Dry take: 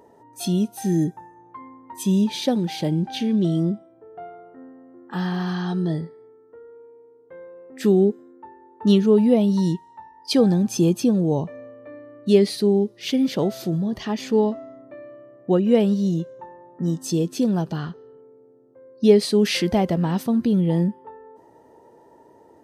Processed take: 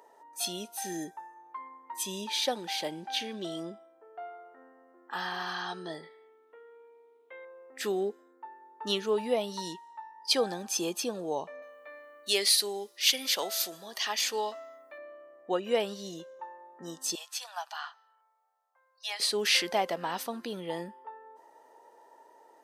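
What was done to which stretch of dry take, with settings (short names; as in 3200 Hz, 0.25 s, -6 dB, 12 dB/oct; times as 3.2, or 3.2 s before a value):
6.03–7.45 band shelf 2800 Hz +12 dB 1.1 oct
11.62–14.98 tilt +3.5 dB/oct
17.15–19.2 steep high-pass 720 Hz 48 dB/oct
whole clip: HPF 770 Hz 12 dB/oct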